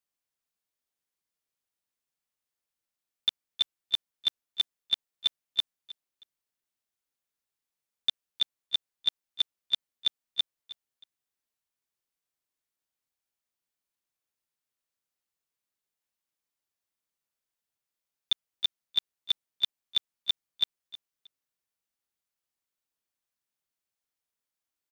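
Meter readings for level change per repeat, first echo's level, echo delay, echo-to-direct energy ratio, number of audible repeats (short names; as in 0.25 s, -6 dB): -12.5 dB, -17.0 dB, 0.315 s, -17.0 dB, 2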